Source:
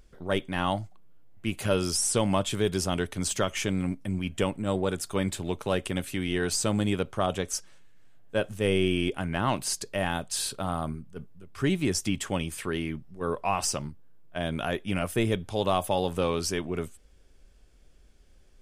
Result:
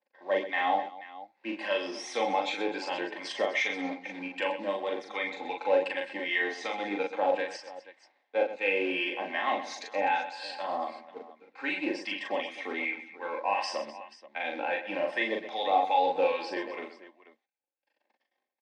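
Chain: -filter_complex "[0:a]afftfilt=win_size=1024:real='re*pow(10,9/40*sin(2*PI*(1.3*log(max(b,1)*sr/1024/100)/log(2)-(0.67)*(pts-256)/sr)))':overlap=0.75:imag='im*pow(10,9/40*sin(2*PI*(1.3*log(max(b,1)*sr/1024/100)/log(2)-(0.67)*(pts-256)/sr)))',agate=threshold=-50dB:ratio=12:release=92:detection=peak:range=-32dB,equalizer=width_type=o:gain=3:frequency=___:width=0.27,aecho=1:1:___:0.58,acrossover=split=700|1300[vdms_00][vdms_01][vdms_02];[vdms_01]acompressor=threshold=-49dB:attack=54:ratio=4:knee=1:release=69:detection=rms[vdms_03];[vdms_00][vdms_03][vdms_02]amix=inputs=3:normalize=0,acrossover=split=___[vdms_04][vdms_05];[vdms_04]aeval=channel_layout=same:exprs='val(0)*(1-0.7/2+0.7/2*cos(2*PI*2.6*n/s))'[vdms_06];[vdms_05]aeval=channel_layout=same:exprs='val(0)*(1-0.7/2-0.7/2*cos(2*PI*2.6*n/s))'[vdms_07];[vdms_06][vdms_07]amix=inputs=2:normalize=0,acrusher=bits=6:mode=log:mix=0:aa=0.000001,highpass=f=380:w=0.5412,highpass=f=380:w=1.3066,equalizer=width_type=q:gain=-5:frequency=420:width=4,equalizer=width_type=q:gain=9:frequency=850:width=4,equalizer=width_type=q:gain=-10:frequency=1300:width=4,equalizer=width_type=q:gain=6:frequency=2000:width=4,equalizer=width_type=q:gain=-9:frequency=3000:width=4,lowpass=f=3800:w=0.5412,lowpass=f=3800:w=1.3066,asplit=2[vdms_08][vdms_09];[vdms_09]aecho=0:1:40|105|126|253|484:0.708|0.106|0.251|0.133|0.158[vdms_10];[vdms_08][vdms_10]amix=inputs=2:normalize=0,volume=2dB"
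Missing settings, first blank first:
2600, 3.8, 980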